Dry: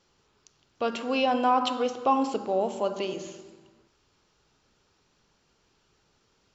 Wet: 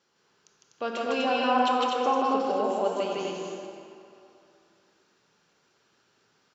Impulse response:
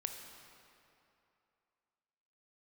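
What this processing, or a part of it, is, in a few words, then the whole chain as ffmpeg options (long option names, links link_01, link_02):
stadium PA: -filter_complex "[0:a]highpass=170,equalizer=frequency=1600:width_type=o:width=0.42:gain=5,aecho=1:1:154.5|247.8:0.891|0.708[link_01];[1:a]atrim=start_sample=2205[link_02];[link_01][link_02]afir=irnorm=-1:irlink=0,asettb=1/sr,asplit=3[link_03][link_04][link_05];[link_03]atrim=end=2.224[link_06];[link_04]atrim=start=2.22:end=2.64,asetpts=PTS-STARTPTS,afade=type=in:duration=0.004:curve=qsin,afade=type=out:start_time=0.416:duration=0.004:curve=qsin,lowpass=frequency=5900:width=0.5412,lowpass=frequency=5900:width=1.3066[link_07];[link_05]atrim=start=2.636[link_08];[link_06][link_07]acrossfade=duration=0.004:curve1=hsin:curve2=qsin[link_09];[link_09][link_08]acrossfade=duration=0.004:curve1=qsin:curve2=hsin,volume=-2dB"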